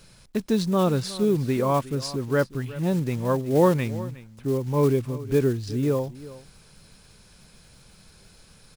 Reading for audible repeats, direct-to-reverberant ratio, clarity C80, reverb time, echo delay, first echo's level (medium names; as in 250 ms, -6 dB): 1, no reverb, no reverb, no reverb, 363 ms, -17.5 dB